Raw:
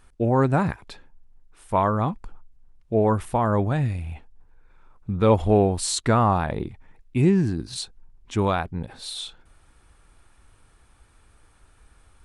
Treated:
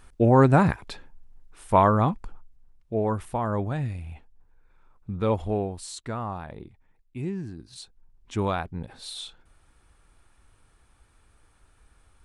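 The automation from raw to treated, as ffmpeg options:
-af "volume=12dB,afade=t=out:st=1.78:d=1.16:silence=0.375837,afade=t=out:st=5.14:d=0.73:silence=0.421697,afade=t=in:st=7.71:d=0.64:silence=0.354813"

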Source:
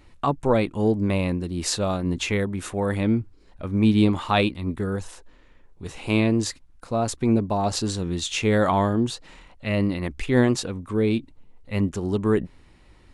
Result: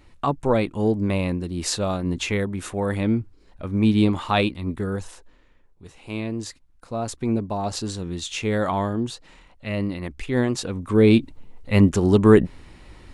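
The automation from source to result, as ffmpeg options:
-af "volume=19dB,afade=t=out:st=5:d=0.96:silence=0.281838,afade=t=in:st=5.96:d=1.22:silence=0.398107,afade=t=in:st=10.52:d=0.63:silence=0.281838"

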